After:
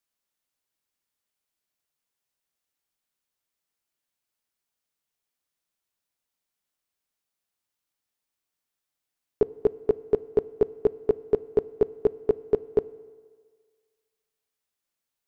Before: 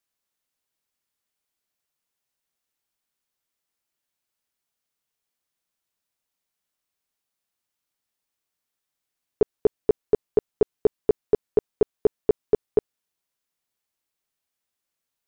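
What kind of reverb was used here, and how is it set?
FDN reverb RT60 1.7 s, low-frequency decay 0.75×, high-frequency decay 0.75×, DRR 18 dB; gain -2 dB

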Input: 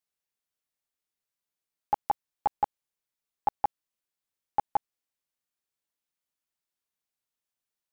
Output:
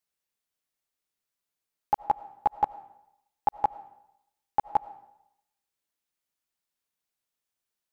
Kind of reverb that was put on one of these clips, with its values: digital reverb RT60 0.81 s, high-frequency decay 0.85×, pre-delay 50 ms, DRR 16.5 dB; gain +2 dB

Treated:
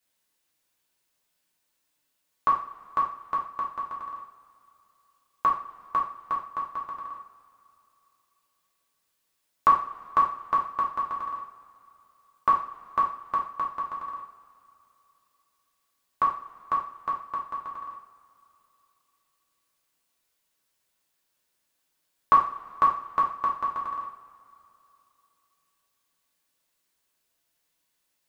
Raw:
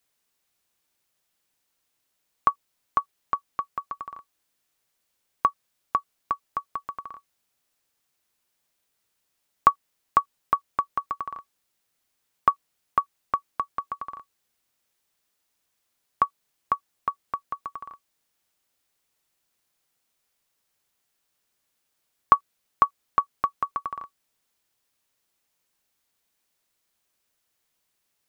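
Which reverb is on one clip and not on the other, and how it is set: two-slope reverb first 0.43 s, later 3 s, from -21 dB, DRR -4.5 dB; gain -6 dB

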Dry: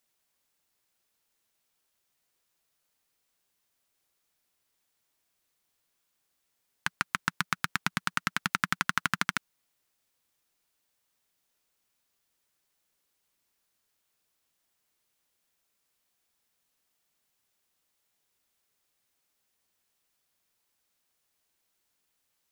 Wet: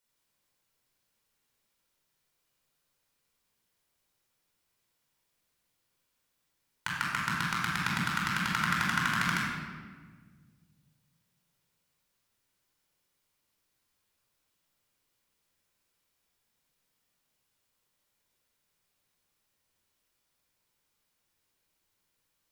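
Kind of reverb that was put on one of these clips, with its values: shoebox room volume 1700 m³, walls mixed, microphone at 4.7 m; gain -7 dB

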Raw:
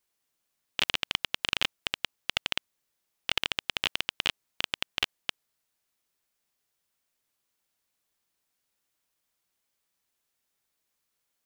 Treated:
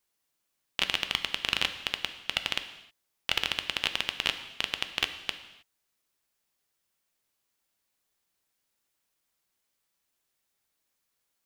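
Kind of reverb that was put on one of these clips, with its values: non-linear reverb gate 0.34 s falling, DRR 8 dB

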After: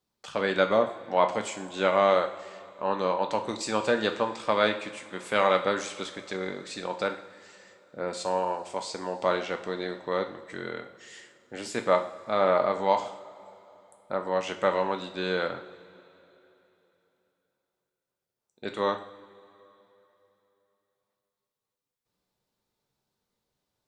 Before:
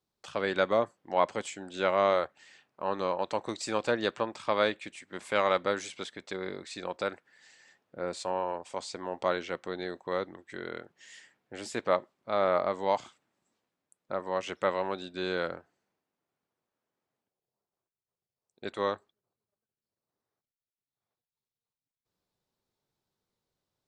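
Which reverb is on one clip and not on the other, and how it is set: two-slope reverb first 0.52 s, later 3.3 s, from -18 dB, DRR 5 dB; gain +2.5 dB

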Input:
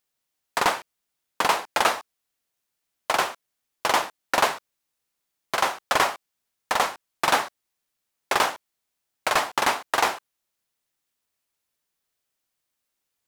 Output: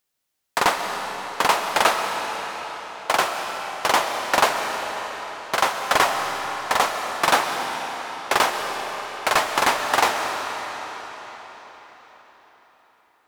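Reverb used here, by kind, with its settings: digital reverb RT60 4.9 s, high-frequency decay 0.9×, pre-delay 90 ms, DRR 4 dB; gain +2.5 dB

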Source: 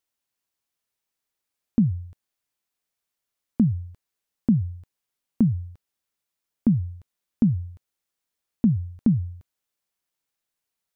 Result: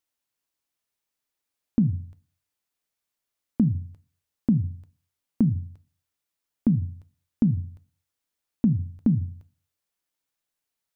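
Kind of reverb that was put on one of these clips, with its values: FDN reverb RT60 0.31 s, low-frequency decay 1.55×, high-frequency decay 0.8×, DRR 14.5 dB; gain -1 dB

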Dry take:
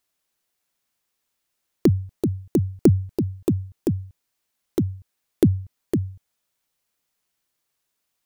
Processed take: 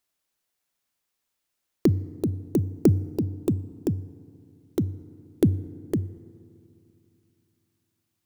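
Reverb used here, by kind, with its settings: FDN reverb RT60 2.6 s, low-frequency decay 1.25×, high-frequency decay 0.4×, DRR 18.5 dB; gain -3 dB

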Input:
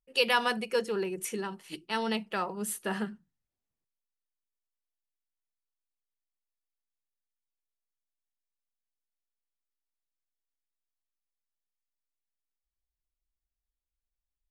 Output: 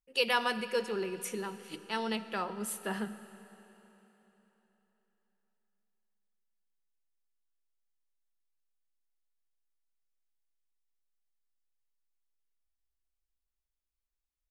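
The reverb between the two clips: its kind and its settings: digital reverb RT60 3.8 s, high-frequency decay 0.95×, pre-delay 10 ms, DRR 13 dB; gain -3 dB

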